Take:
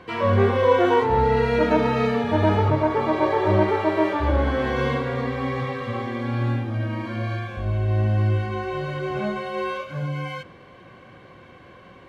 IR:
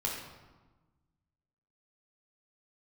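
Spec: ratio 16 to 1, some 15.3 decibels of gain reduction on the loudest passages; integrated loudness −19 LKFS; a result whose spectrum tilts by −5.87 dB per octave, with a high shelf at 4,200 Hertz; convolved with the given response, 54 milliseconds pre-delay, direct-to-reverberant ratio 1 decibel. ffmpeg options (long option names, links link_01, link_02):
-filter_complex "[0:a]highshelf=frequency=4200:gain=8,acompressor=threshold=-28dB:ratio=16,asplit=2[link_01][link_02];[1:a]atrim=start_sample=2205,adelay=54[link_03];[link_02][link_03]afir=irnorm=-1:irlink=0,volume=-5.5dB[link_04];[link_01][link_04]amix=inputs=2:normalize=0,volume=10dB"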